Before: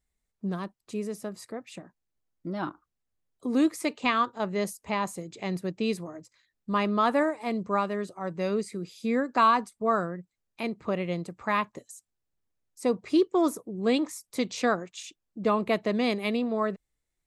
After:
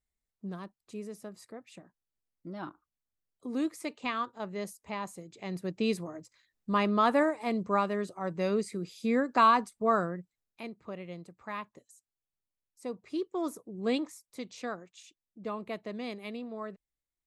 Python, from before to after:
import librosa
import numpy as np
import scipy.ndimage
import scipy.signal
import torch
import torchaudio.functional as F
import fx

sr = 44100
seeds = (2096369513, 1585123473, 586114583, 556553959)

y = fx.gain(x, sr, db=fx.line((5.38, -8.0), (5.81, -1.0), (10.17, -1.0), (10.77, -12.0), (13.1, -12.0), (13.94, -4.5), (14.24, -12.0)))